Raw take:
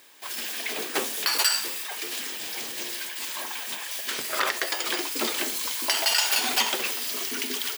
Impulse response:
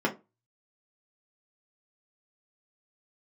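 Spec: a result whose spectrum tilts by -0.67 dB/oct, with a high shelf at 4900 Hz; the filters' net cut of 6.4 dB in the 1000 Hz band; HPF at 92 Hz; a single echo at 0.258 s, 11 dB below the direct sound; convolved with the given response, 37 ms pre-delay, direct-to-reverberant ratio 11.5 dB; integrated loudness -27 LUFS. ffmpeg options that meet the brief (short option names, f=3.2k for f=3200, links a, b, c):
-filter_complex "[0:a]highpass=92,equalizer=f=1k:t=o:g=-8,highshelf=f=4.9k:g=-8.5,aecho=1:1:258:0.282,asplit=2[a][b];[1:a]atrim=start_sample=2205,adelay=37[c];[b][c]afir=irnorm=-1:irlink=0,volume=-22.5dB[d];[a][d]amix=inputs=2:normalize=0,volume=3dB"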